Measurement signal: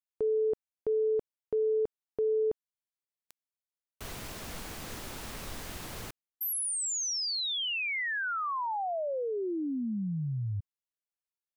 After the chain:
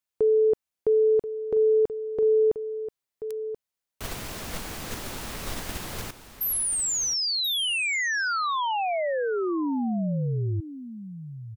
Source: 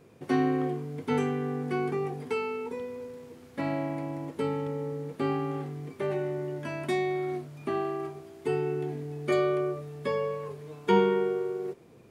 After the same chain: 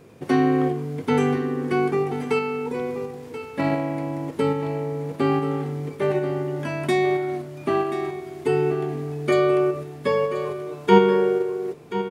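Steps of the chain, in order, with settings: in parallel at +1 dB: level held to a coarse grid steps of 10 dB; on the sum: delay 1032 ms -12 dB; trim +2.5 dB

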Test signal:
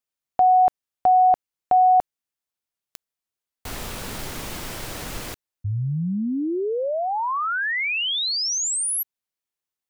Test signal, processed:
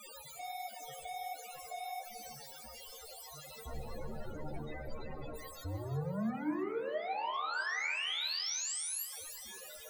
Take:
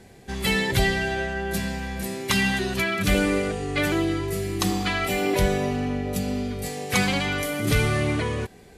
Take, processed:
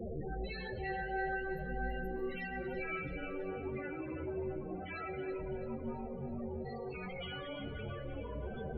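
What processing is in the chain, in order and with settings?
one-bit comparator; peaking EQ 530 Hz +6.5 dB 0.26 oct; peak limiter -24 dBFS; feedback comb 52 Hz, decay 0.84 s, harmonics all, mix 60%; flange 1.4 Hz, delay 7.9 ms, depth 9.4 ms, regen +38%; feedback comb 78 Hz, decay 0.18 s, harmonics all, mix 90%; frequency shift -13 Hz; loudest bins only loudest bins 16; on a send: two-band feedback delay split 470 Hz, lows 96 ms, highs 330 ms, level -11 dB; on the sum: plate-style reverb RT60 1.7 s, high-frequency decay 0.65×, pre-delay 100 ms, DRR 14 dB; trim +3.5 dB

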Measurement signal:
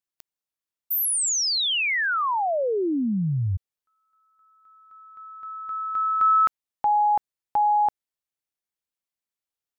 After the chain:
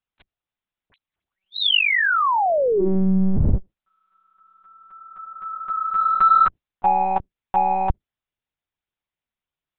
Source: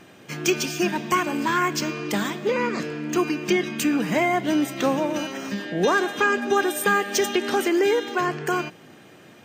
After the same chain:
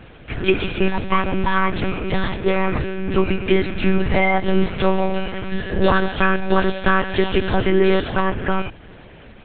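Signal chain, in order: octave divider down 1 oct, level 0 dB; in parallel at -9 dB: saturation -17.5 dBFS; on the sum: monotone LPC vocoder at 8 kHz 190 Hz; trim +2.5 dB

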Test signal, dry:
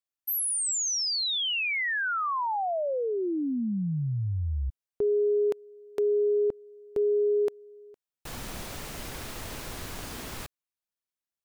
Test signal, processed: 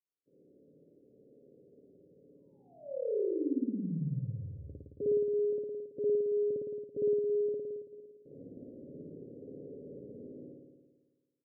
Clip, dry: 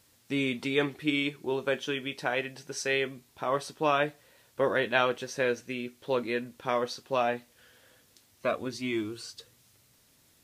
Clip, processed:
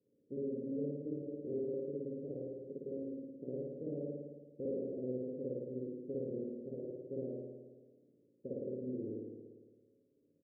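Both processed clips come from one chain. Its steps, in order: spectral contrast reduction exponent 0.41; compression 2:1, threshold -32 dBFS; high-pass 210 Hz 12 dB/octave; dynamic bell 310 Hz, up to -4 dB, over -41 dBFS, Q 0.73; steep low-pass 520 Hz 72 dB/octave; comb 7.2 ms, depth 32%; spring tank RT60 1.4 s, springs 55 ms, DRR -6 dB; trim -3 dB

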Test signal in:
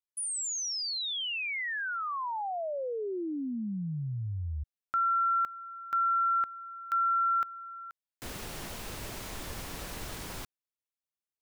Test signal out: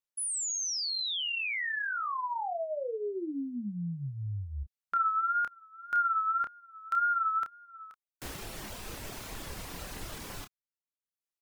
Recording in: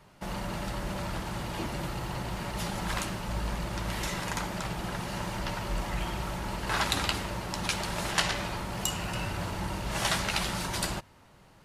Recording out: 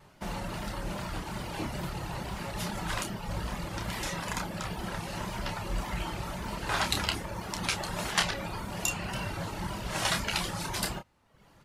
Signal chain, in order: reverb removal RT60 0.81 s; wow and flutter 77 cents; doubling 29 ms -7 dB

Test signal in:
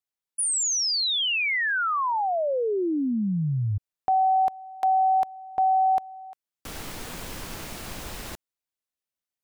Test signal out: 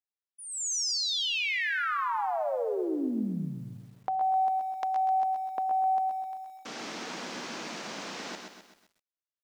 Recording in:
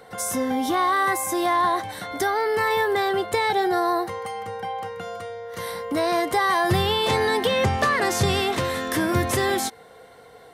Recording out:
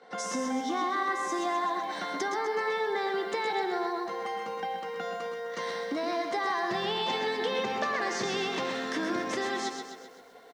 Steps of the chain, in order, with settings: expander -42 dBFS, range -10 dB; elliptic band-pass 210–6100 Hz, stop band 60 dB; compression 3:1, threshold -32 dBFS; delay 113 ms -9 dB; bit-crushed delay 129 ms, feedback 55%, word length 10-bit, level -7 dB

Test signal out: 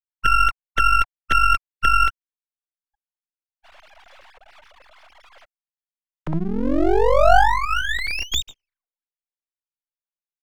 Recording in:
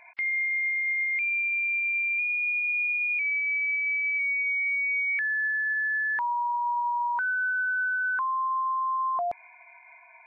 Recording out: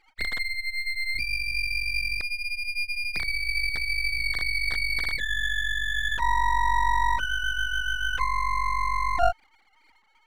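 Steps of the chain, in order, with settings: formants replaced by sine waves; dynamic bell 730 Hz, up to +5 dB, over -39 dBFS, Q 3.5; half-wave rectifier; trim +4 dB

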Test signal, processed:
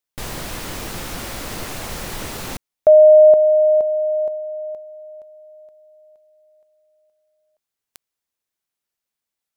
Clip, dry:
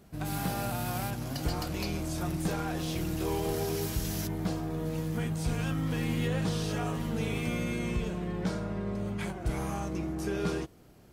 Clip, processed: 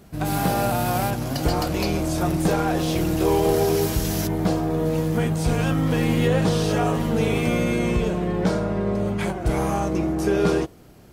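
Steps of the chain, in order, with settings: dynamic bell 550 Hz, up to +6 dB, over -42 dBFS, Q 0.73; trim +8 dB

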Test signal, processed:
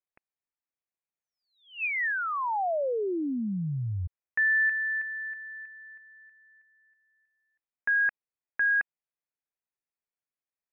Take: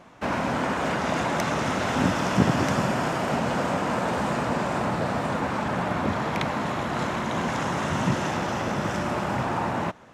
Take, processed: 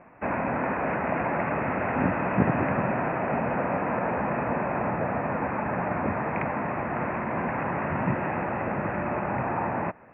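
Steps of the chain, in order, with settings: rippled Chebyshev low-pass 2.6 kHz, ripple 3 dB

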